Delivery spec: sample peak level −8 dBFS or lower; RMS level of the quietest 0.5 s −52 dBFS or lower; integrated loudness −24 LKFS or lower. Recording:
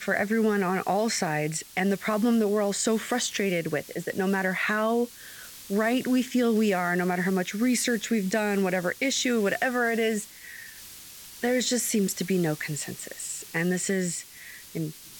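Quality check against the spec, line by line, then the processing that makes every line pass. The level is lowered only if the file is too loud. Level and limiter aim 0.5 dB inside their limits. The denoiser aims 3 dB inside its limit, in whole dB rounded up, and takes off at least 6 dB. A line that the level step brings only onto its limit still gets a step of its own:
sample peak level −12.0 dBFS: in spec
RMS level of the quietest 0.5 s −45 dBFS: out of spec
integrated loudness −26.5 LKFS: in spec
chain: broadband denoise 10 dB, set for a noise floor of −45 dBFS

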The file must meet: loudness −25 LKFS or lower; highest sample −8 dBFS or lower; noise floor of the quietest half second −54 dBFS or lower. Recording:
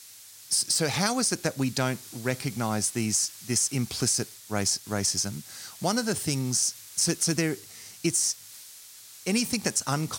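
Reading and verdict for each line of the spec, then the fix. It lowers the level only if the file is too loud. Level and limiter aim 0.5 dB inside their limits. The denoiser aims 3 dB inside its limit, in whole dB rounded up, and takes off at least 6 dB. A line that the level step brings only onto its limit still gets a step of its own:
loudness −26.5 LKFS: in spec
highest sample −9.0 dBFS: in spec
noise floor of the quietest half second −48 dBFS: out of spec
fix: broadband denoise 9 dB, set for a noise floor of −48 dBFS

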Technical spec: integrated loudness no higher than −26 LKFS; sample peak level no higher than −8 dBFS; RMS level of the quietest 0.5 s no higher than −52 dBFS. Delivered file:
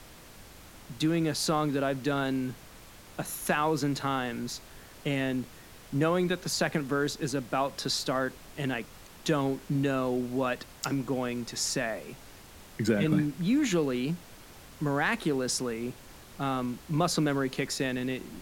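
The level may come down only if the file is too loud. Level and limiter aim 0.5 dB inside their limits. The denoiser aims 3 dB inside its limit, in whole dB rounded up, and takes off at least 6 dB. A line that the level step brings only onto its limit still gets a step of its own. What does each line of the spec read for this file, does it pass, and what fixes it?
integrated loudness −30.0 LKFS: in spec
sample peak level −13.5 dBFS: in spec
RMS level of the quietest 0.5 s −50 dBFS: out of spec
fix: broadband denoise 6 dB, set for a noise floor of −50 dBFS

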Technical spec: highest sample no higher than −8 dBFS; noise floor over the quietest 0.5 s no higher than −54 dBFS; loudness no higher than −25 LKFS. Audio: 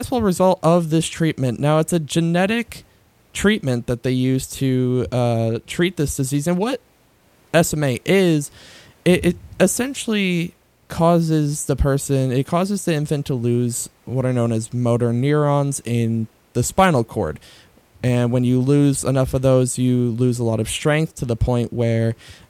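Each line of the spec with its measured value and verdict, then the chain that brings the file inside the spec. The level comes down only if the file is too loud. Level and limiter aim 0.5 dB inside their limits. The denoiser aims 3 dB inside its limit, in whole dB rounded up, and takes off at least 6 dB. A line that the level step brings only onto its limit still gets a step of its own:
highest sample −2.5 dBFS: out of spec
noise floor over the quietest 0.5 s −56 dBFS: in spec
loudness −19.5 LKFS: out of spec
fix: level −6 dB

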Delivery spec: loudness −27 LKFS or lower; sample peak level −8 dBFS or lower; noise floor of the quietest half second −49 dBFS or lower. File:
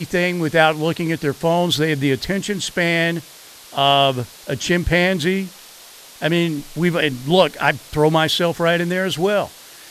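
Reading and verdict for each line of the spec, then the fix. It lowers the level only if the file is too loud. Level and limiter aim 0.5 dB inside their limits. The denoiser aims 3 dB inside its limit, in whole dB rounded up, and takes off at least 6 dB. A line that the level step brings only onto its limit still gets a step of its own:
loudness −18.5 LKFS: out of spec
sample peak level −2.5 dBFS: out of spec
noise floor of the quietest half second −42 dBFS: out of spec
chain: level −9 dB

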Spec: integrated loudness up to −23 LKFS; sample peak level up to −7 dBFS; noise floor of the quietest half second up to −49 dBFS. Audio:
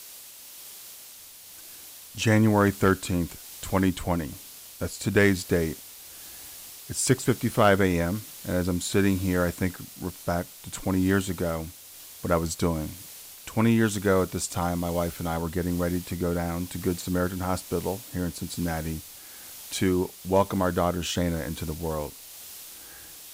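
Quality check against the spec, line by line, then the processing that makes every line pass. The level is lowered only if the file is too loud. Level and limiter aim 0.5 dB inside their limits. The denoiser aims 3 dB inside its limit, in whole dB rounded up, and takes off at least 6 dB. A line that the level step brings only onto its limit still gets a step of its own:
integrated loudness −26.5 LKFS: in spec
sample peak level −9.5 dBFS: in spec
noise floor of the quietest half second −47 dBFS: out of spec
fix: broadband denoise 6 dB, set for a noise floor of −47 dBFS

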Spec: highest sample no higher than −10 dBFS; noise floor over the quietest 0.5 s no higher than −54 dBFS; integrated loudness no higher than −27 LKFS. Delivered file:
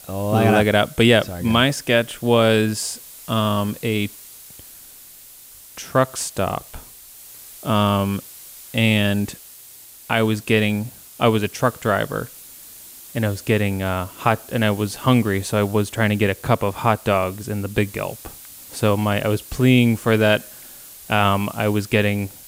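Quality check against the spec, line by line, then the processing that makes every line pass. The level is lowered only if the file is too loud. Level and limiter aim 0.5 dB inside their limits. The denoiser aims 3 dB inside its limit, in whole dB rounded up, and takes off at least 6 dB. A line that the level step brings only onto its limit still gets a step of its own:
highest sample −3.5 dBFS: out of spec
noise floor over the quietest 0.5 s −44 dBFS: out of spec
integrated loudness −20.0 LKFS: out of spec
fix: broadband denoise 6 dB, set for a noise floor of −44 dBFS
level −7.5 dB

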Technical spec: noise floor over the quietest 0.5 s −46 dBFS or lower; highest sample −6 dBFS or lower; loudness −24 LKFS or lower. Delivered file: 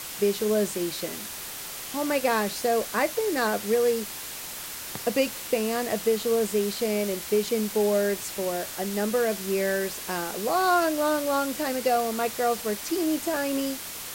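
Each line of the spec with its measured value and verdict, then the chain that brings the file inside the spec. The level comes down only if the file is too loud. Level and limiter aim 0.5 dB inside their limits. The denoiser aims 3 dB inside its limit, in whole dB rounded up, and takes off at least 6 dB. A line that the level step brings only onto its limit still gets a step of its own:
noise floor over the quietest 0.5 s −37 dBFS: out of spec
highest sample −12.0 dBFS: in spec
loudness −26.5 LKFS: in spec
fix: broadband denoise 12 dB, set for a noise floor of −37 dBFS

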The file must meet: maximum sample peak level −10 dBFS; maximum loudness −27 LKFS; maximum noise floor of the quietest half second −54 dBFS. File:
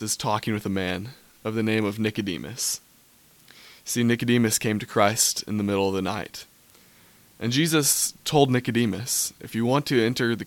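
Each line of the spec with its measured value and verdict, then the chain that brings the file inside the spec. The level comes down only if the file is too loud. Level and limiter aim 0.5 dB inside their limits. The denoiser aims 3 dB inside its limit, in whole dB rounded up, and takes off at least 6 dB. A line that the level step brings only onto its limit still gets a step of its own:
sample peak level −4.5 dBFS: out of spec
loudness −24.0 LKFS: out of spec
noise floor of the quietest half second −57 dBFS: in spec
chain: level −3.5 dB
brickwall limiter −10.5 dBFS

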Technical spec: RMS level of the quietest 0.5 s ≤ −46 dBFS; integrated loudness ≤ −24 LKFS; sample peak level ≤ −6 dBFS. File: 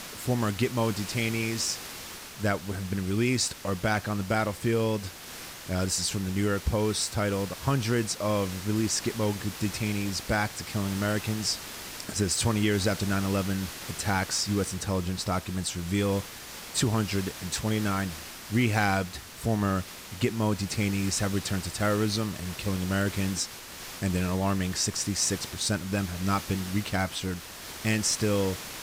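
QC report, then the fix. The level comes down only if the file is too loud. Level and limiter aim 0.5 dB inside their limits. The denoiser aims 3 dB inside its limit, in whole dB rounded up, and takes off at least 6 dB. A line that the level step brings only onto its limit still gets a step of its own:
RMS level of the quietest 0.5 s −42 dBFS: out of spec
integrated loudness −28.5 LKFS: in spec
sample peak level −11.0 dBFS: in spec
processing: broadband denoise 7 dB, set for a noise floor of −42 dBFS

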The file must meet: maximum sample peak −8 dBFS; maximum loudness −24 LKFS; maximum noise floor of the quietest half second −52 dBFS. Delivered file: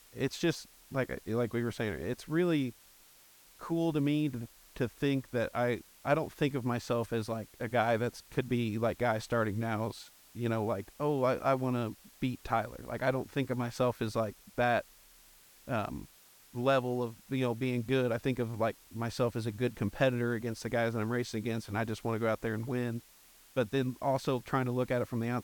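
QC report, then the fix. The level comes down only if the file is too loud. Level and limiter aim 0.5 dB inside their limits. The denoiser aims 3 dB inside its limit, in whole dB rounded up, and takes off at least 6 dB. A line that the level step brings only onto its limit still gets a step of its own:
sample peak −15.5 dBFS: in spec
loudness −33.5 LKFS: in spec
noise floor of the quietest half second −60 dBFS: in spec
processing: no processing needed

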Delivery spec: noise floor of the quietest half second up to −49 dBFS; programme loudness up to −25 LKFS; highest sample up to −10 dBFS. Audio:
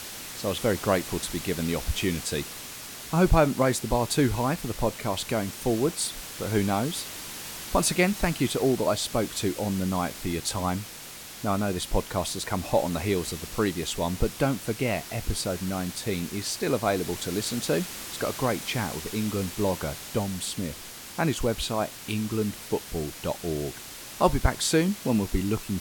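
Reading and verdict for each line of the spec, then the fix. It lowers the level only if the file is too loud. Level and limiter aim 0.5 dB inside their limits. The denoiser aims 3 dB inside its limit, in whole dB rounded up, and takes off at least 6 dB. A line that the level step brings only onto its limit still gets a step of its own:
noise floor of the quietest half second −42 dBFS: out of spec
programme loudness −27.5 LKFS: in spec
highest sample −7.0 dBFS: out of spec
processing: broadband denoise 10 dB, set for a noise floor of −42 dBFS
brickwall limiter −10.5 dBFS

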